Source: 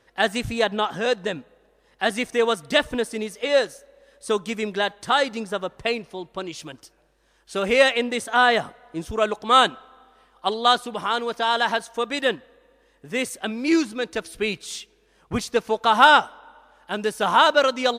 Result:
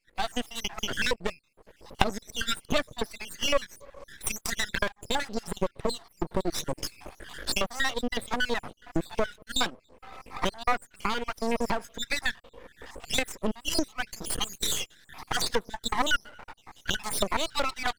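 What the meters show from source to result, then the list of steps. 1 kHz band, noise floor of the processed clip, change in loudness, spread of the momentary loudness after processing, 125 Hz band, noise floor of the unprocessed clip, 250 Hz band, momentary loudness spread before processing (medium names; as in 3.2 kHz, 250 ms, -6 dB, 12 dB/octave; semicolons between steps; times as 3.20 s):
-11.5 dB, -66 dBFS, -8.5 dB, 10 LU, -1.0 dB, -62 dBFS, -7.0 dB, 15 LU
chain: random holes in the spectrogram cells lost 72%; recorder AGC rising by 37 dB/s; half-wave rectifier; trim -2 dB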